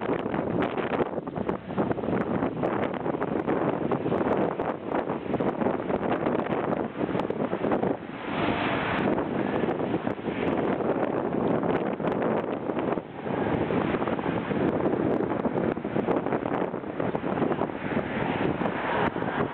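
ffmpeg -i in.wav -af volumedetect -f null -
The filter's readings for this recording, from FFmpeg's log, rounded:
mean_volume: -27.3 dB
max_volume: -14.2 dB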